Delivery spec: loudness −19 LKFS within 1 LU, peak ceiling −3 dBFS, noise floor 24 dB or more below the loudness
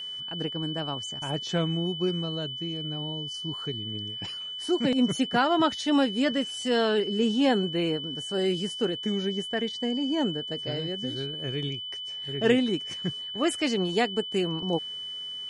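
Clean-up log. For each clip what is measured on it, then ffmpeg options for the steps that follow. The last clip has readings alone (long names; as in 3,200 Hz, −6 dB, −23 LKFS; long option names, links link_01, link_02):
interfering tone 3,000 Hz; level of the tone −34 dBFS; integrated loudness −28.0 LKFS; sample peak −10.0 dBFS; target loudness −19.0 LKFS
→ -af "bandreject=frequency=3000:width=30"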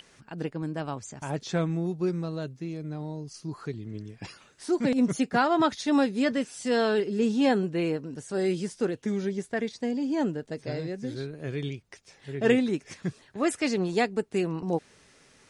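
interfering tone none found; integrated loudness −28.5 LKFS; sample peak −10.5 dBFS; target loudness −19.0 LKFS
→ -af "volume=9.5dB,alimiter=limit=-3dB:level=0:latency=1"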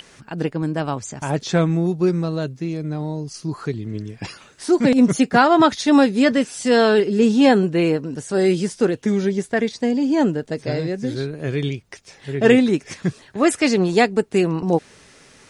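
integrated loudness −19.5 LKFS; sample peak −3.0 dBFS; background noise floor −50 dBFS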